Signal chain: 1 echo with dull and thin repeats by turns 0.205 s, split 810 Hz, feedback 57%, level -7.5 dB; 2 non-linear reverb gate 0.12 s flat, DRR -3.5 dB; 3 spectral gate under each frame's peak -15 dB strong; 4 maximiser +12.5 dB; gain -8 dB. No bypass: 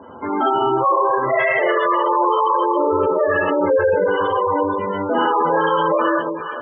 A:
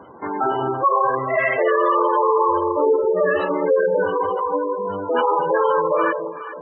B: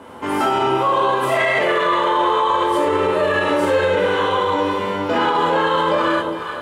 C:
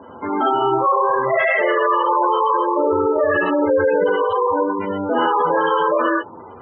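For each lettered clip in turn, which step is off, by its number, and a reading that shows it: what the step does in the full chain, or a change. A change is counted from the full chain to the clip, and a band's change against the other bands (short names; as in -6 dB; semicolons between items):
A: 2, momentary loudness spread change +1 LU; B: 3, 125 Hz band +3.5 dB; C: 1, 125 Hz band -2.5 dB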